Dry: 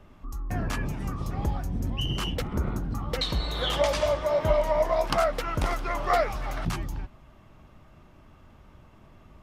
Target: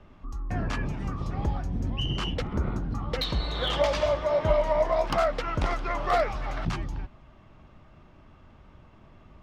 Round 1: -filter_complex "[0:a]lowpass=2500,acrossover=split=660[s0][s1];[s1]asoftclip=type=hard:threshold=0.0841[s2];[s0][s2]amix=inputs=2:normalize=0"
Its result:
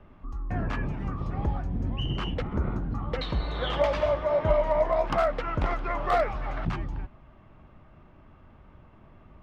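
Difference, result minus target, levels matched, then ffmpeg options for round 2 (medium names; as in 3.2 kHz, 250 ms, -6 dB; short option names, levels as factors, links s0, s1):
4 kHz band -5.0 dB
-filter_complex "[0:a]lowpass=5200,acrossover=split=660[s0][s1];[s1]asoftclip=type=hard:threshold=0.0841[s2];[s0][s2]amix=inputs=2:normalize=0"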